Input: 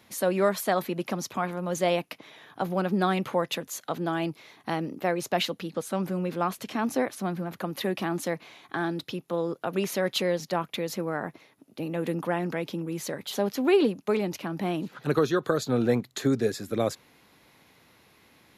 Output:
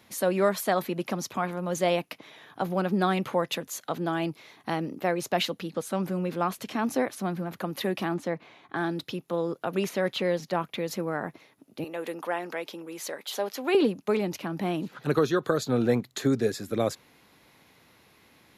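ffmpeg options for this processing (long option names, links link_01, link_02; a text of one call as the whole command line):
ffmpeg -i in.wav -filter_complex "[0:a]asettb=1/sr,asplit=3[link_01][link_02][link_03];[link_01]atrim=end=8.144[link_04];[link_02]atrim=start=8.14:end=8.76,asetpts=PTS-STARTPTS,afade=type=in:duration=0.004:curve=qsin,afade=type=out:start_time=0.616:duration=0.004:curve=qsin,lowpass=frequency=1900:poles=1[link_05];[link_03]atrim=start=8.756[link_06];[link_04][link_05]acrossfade=duration=0.004:curve1=hsin:curve2=qsin[link_07];[link_07][link_06]acrossfade=duration=0.004:curve1=qsin:curve2=hsin,asettb=1/sr,asplit=3[link_08][link_09][link_10];[link_08]atrim=end=9.894[link_11];[link_09]atrim=start=9.89:end=10.91,asetpts=PTS-STARTPTS,afade=type=in:duration=0.004:curve=qsin,afade=type=out:start_time=1.016:duration=0.004:curve=qsin,acrossover=split=3600[link_12][link_13];[link_13]acompressor=threshold=-44dB:ratio=4:attack=1:release=60[link_14];[link_12][link_14]amix=inputs=2:normalize=0[link_15];[link_10]atrim=start=10.906[link_16];[link_11][link_15]acrossfade=duration=0.004:curve1=hsin:curve2=qsin[link_17];[link_17][link_16]acrossfade=duration=0.004:curve1=qsin:curve2=hsin,asettb=1/sr,asplit=3[link_18][link_19][link_20];[link_18]atrim=end=11.844[link_21];[link_19]atrim=start=11.84:end=13.75,asetpts=PTS-STARTPTS,afade=type=in:duration=0.004:curve=qsin,afade=type=out:start_time=1.906:duration=0.004:curve=qsin,highpass=460[link_22];[link_20]atrim=start=13.746[link_23];[link_21][link_22]acrossfade=duration=0.004:curve1=hsin:curve2=qsin[link_24];[link_24][link_23]acrossfade=duration=0.004:curve1=qsin:curve2=hsin" out.wav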